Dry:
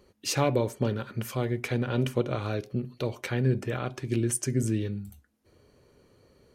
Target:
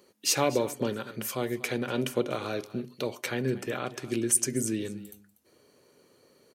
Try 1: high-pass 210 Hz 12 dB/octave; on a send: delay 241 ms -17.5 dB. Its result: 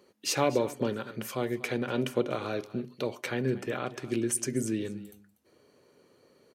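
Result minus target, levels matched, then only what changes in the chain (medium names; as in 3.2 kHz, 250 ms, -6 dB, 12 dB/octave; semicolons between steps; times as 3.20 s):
8 kHz band -4.5 dB
add after high-pass: treble shelf 4.9 kHz +8.5 dB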